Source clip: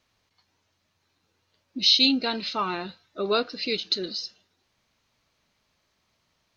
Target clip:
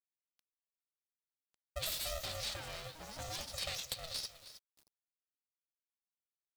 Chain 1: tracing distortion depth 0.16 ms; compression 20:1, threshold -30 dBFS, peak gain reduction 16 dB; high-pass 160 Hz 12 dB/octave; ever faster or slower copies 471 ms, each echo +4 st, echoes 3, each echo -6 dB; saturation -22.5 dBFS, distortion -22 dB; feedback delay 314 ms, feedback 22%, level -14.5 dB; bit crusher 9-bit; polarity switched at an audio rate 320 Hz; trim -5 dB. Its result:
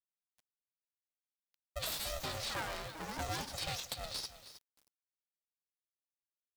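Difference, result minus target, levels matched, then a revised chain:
saturation: distortion +11 dB; 1 kHz band +5.5 dB
tracing distortion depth 0.16 ms; compression 20:1, threshold -30 dBFS, peak gain reduction 16 dB; high-pass 160 Hz 12 dB/octave; high-order bell 780 Hz -11.5 dB 2.2 oct; ever faster or slower copies 471 ms, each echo +4 st, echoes 3, each echo -6 dB; saturation -15.5 dBFS, distortion -33 dB; feedback delay 314 ms, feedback 22%, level -14.5 dB; bit crusher 9-bit; polarity switched at an audio rate 320 Hz; trim -5 dB

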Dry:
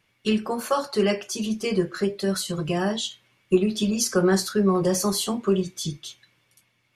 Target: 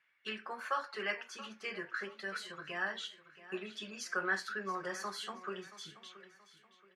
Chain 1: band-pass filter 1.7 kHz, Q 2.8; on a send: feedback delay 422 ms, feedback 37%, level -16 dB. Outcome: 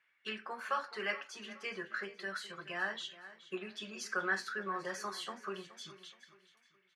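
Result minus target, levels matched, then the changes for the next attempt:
echo 255 ms early
change: feedback delay 677 ms, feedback 37%, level -16 dB

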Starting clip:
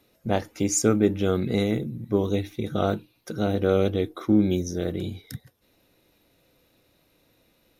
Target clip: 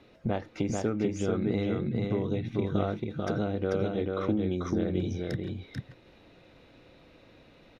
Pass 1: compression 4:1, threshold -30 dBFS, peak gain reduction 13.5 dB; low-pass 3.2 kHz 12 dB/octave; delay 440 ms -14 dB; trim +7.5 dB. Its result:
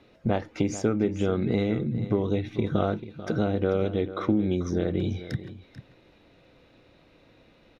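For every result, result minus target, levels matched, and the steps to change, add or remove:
echo-to-direct -11 dB; compression: peak gain reduction -5 dB
change: delay 440 ms -3 dB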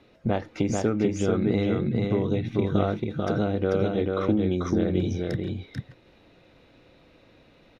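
compression: peak gain reduction -5 dB
change: compression 4:1, threshold -36.5 dBFS, peak gain reduction 18.5 dB

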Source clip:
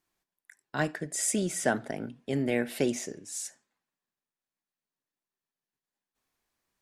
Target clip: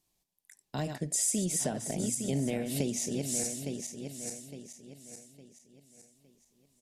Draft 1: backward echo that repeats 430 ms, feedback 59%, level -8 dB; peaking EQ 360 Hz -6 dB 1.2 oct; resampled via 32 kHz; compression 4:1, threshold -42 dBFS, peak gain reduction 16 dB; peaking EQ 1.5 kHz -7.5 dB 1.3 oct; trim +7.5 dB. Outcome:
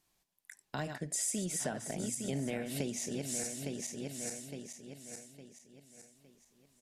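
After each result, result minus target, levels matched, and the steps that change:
2 kHz band +7.0 dB; compression: peak gain reduction +6 dB
change: second peaking EQ 1.5 kHz -17.5 dB 1.3 oct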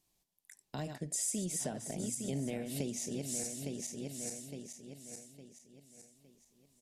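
compression: peak gain reduction +6 dB
change: compression 4:1, threshold -34 dBFS, peak gain reduction 10 dB

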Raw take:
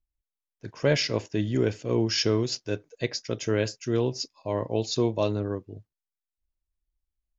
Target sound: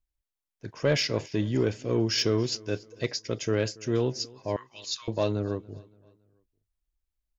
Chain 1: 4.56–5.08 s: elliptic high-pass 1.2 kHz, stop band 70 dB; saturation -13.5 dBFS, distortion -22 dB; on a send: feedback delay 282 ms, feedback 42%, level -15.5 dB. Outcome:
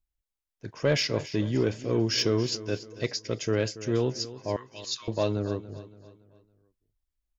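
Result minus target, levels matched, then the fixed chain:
echo-to-direct +7.5 dB
4.56–5.08 s: elliptic high-pass 1.2 kHz, stop band 70 dB; saturation -13.5 dBFS, distortion -22 dB; on a send: feedback delay 282 ms, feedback 42%, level -23 dB

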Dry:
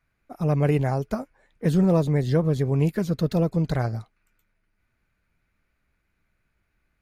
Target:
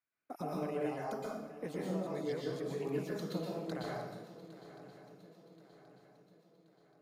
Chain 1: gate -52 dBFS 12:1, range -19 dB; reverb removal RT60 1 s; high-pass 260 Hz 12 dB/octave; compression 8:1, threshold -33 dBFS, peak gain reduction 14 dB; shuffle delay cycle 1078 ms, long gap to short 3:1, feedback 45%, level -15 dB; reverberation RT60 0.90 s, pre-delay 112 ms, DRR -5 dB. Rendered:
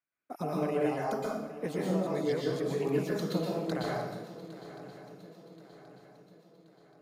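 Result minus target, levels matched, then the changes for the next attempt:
compression: peak gain reduction -7 dB
change: compression 8:1, threshold -41 dBFS, peak gain reduction 21 dB

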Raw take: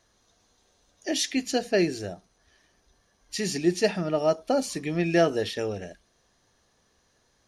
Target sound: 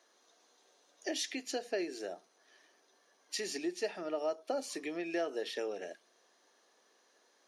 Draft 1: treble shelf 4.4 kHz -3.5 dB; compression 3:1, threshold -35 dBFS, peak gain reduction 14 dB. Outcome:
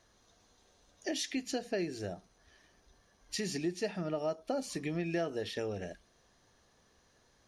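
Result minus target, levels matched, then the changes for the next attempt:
250 Hz band +3.0 dB
add after compression: high-pass 310 Hz 24 dB/octave

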